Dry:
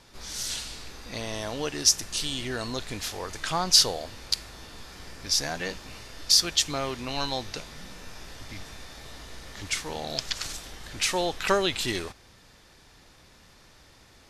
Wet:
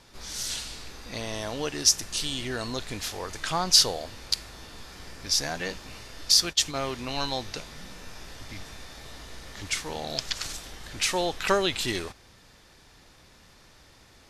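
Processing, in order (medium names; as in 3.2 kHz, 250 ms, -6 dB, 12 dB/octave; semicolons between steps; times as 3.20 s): 6.34–6.84 s: gate -30 dBFS, range -17 dB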